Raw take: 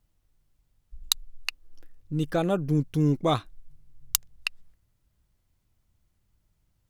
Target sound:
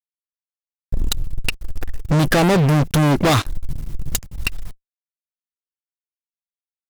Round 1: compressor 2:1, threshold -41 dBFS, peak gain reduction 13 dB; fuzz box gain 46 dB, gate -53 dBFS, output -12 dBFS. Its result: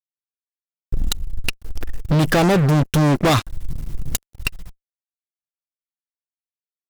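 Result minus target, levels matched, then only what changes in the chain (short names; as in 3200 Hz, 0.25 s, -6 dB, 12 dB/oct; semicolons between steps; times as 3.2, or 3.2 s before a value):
compressor: peak gain reduction +4.5 dB
change: compressor 2:1, threshold -32 dBFS, peak gain reduction 8.5 dB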